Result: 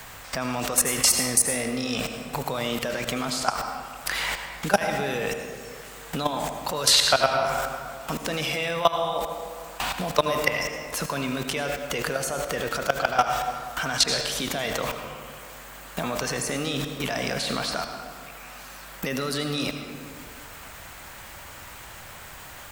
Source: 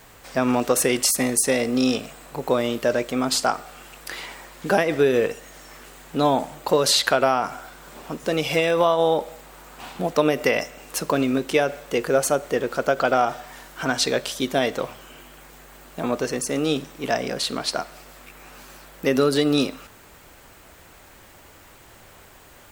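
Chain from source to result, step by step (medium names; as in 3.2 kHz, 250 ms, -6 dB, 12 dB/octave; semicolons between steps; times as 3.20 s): peaking EQ 350 Hz -10.5 dB 1.6 oct; level held to a coarse grid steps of 21 dB; on a send at -6.5 dB: reverberation RT60 1.6 s, pre-delay 71 ms; on the sum: loudness maximiser +14 dB; three bands compressed up and down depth 40%; trim -1 dB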